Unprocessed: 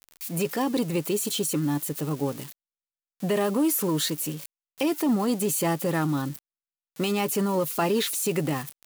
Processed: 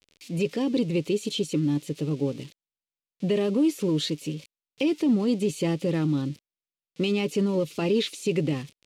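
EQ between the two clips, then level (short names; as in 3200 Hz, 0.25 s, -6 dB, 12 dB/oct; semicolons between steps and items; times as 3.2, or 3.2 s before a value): LPF 4200 Hz 12 dB/oct; band shelf 1100 Hz -12 dB; +1.5 dB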